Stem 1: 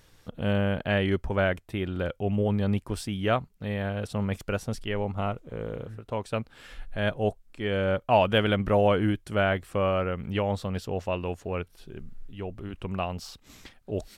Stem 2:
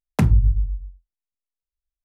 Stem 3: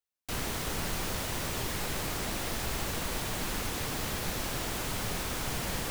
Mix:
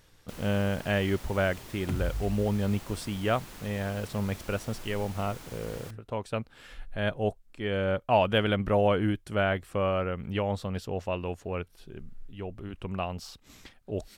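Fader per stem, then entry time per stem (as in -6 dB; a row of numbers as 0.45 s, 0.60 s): -2.0 dB, -16.5 dB, -12.5 dB; 0.00 s, 1.70 s, 0.00 s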